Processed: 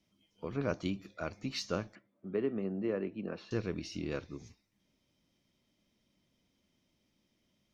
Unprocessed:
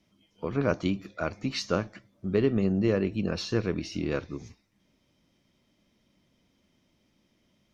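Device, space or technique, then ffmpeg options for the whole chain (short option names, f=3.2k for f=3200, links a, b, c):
exciter from parts: -filter_complex "[0:a]asettb=1/sr,asplit=3[a][b][c];[a]atrim=end=1.954[d];[b]atrim=start=1.95:end=3.51,asetpts=PTS-STARTPTS,afade=t=in:d=0.004:c=qsin,afade=t=out:st=1.556:d=0.004:c=qsin,acrossover=split=180 2500:gain=0.126 1 0.0708[e][f][g];[e][f][g]amix=inputs=3:normalize=0[h];[c]atrim=start=3.506[i];[d][h]acrossfade=d=0.004:c1=hsin:c2=qsin[j];[j][i]acrossfade=d=0.004:c1=qsin:c2=hsin,asplit=2[k][l];[l]highpass=2.1k,asoftclip=type=tanh:threshold=-27.5dB,volume=-7dB[m];[k][m]amix=inputs=2:normalize=0,volume=-7.5dB"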